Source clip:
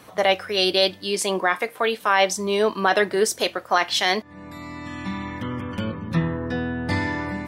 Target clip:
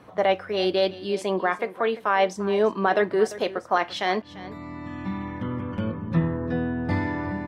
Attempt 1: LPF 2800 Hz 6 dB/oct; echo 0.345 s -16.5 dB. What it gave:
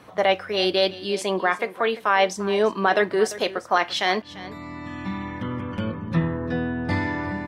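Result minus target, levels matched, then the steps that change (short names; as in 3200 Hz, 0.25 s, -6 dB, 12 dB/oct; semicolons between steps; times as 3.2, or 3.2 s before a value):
2000 Hz band +2.5 dB
change: LPF 1100 Hz 6 dB/oct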